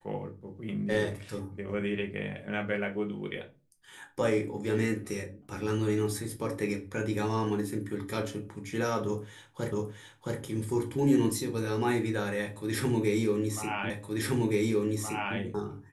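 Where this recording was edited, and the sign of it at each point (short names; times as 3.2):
9.72 repeat of the last 0.67 s
13.9 repeat of the last 1.47 s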